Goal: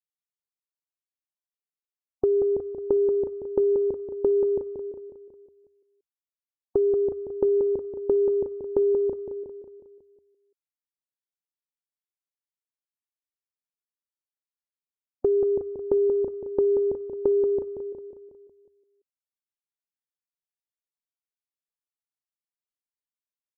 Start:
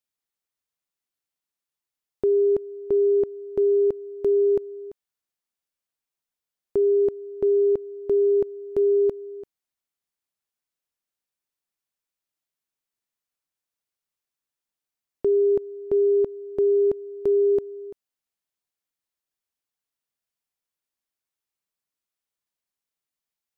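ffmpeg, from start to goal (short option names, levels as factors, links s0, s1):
-af "agate=range=0.447:threshold=0.0355:ratio=16:detection=peak,afftdn=nr=19:nf=-42,equalizer=f=78:w=5.9:g=7,acompressor=threshold=0.0316:ratio=6,aecho=1:1:182|364|546|728|910|1092:0.447|0.237|0.125|0.0665|0.0352|0.0187,volume=2.82"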